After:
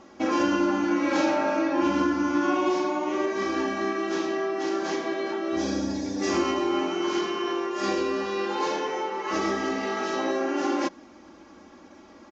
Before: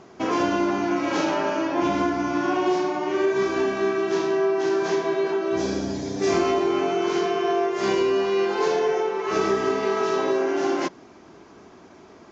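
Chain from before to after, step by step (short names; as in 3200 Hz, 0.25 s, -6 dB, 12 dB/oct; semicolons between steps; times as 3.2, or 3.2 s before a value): comb 3.6 ms, depth 84%; gain -3.5 dB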